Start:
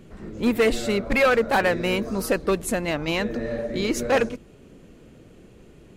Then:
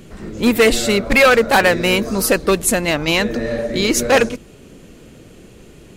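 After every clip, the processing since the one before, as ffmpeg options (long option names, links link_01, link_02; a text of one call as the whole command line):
ffmpeg -i in.wav -af "highshelf=frequency=2800:gain=8,volume=6.5dB" out.wav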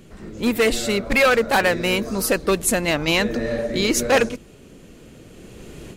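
ffmpeg -i in.wav -af "dynaudnorm=framelen=590:gausssize=3:maxgain=12.5dB,volume=-6dB" out.wav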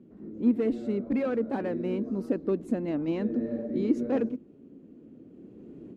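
ffmpeg -i in.wav -af "bandpass=frequency=270:width_type=q:width=2.7:csg=0" out.wav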